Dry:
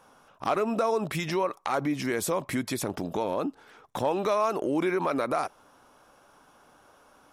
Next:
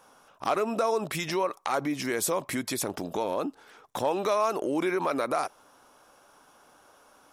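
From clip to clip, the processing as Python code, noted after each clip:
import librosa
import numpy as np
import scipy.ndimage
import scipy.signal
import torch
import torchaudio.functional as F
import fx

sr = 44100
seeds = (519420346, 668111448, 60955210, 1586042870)

y = fx.bass_treble(x, sr, bass_db=-5, treble_db=4)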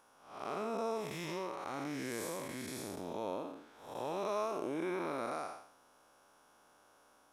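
y = fx.spec_blur(x, sr, span_ms=251.0)
y = y * librosa.db_to_amplitude(-6.5)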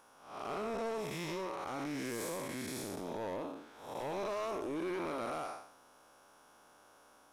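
y = 10.0 ** (-36.5 / 20.0) * np.tanh(x / 10.0 ** (-36.5 / 20.0))
y = y * librosa.db_to_amplitude(3.5)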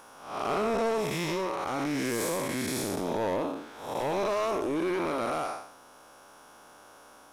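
y = fx.rider(x, sr, range_db=4, speed_s=2.0)
y = y * librosa.db_to_amplitude(9.0)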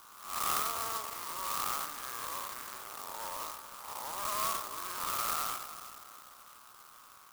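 y = fx.ladder_bandpass(x, sr, hz=1300.0, resonance_pct=70)
y = fx.echo_feedback(y, sr, ms=323, feedback_pct=48, wet_db=-12.5)
y = fx.clock_jitter(y, sr, seeds[0], jitter_ms=0.11)
y = y * librosa.db_to_amplitude(4.5)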